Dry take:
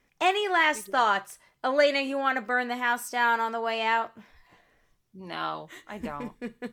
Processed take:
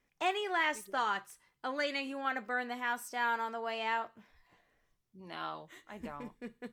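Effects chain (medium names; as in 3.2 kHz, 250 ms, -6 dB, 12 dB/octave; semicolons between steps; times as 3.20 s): 0.97–2.25 s: peaking EQ 630 Hz -15 dB 0.23 oct; trim -8.5 dB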